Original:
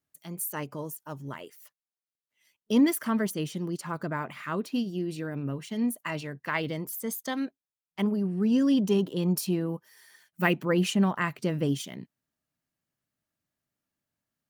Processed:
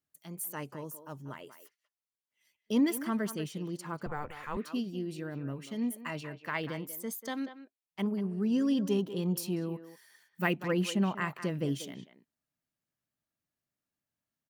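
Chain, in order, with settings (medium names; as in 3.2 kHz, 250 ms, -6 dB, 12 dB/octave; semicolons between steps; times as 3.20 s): speakerphone echo 190 ms, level -11 dB; 4.06–4.57 s: frequency shift -150 Hz; trim -5 dB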